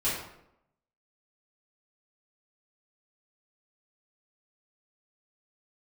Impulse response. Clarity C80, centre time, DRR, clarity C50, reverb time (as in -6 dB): 5.5 dB, 53 ms, -12.0 dB, 2.0 dB, 0.80 s